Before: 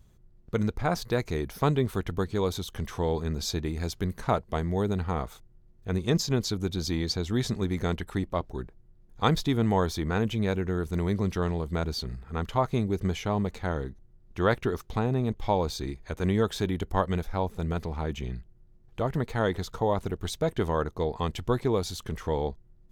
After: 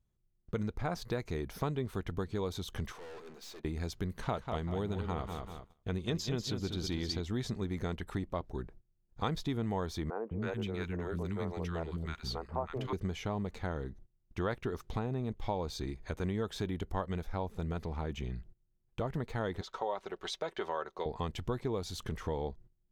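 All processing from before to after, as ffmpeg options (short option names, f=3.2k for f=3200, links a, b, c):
-filter_complex "[0:a]asettb=1/sr,asplit=3[a][b][c];[a]atrim=end=2.924[d];[b]atrim=start=2.92:end=3.65,asetpts=PTS-STARTPTS,afade=t=in:d=0.004:c=qsin,afade=t=out:st=0.726:d=0.004:c=qsin,highpass=400,aeval=exprs='(tanh(200*val(0)+0.45)-tanh(0.45))/200':c=same[e];[c]atrim=start=3.646[f];[d][e]acrossfade=d=0.004:c1=hsin:c2=qsin[g];[g][f]acrossfade=d=0.004:c1=qsin:c2=hsin,asettb=1/sr,asplit=3[h][i][j];[h]atrim=end=4.164[k];[i]atrim=start=4.16:end=7.2,asetpts=PTS-STARTPTS,afade=t=in:d=0.004:c=qsin,afade=t=out:st=3.036:d=0.004:c=qsin,equalizer=f=3.1k:t=o:w=0.5:g=7,aecho=1:1:193|386|579|772:0.376|0.124|0.0409|0.0135,atrim=end_sample=134064[l];[j]atrim=start=7.196[m];[k][l]acrossfade=d=0.004:c1=hsin:c2=qsin[n];[n][m]acrossfade=d=0.004:c1=qsin:c2=hsin,asettb=1/sr,asplit=3[o][p][q];[o]atrim=end=10.104[r];[p]atrim=start=10.1:end=12.93,asetpts=PTS-STARTPTS,afade=t=in:d=0.004:c=qsin,afade=t=out:st=2.826:d=0.004:c=qsin,bass=f=250:g=-4,treble=f=4k:g=-4,acrossover=split=310|1200[s][t][u];[s]adelay=210[v];[u]adelay=320[w];[v][t][w]amix=inputs=3:normalize=0,atrim=end_sample=124803[x];[q]atrim=start=12.926[y];[r][x]acrossfade=d=0.004:c1=hsin:c2=qsin[z];[z][y]acrossfade=d=0.004:c1=qsin:c2=hsin,asettb=1/sr,asplit=3[aa][ab][ac];[aa]atrim=end=19.614[ad];[ab]atrim=start=19.61:end=21.06,asetpts=PTS-STARTPTS,afade=t=in:d=0.004:c=qsin,afade=t=out:st=1.446:d=0.004:c=qsin,acrossover=split=400 6300:gain=0.0708 1 0.178[ae][af][ag];[ae][af][ag]amix=inputs=3:normalize=0,aecho=1:1:5.3:0.46,atrim=end_sample=63945[ah];[ac]atrim=start=21.056[ai];[ad][ah]acrossfade=d=0.004:c1=hsin:c2=qsin[aj];[aj][ai]acrossfade=d=0.004:c1=qsin:c2=hsin,agate=range=-20dB:threshold=-48dB:ratio=16:detection=peak,highshelf=f=7.1k:g=-5.5,acompressor=threshold=-35dB:ratio=2.5"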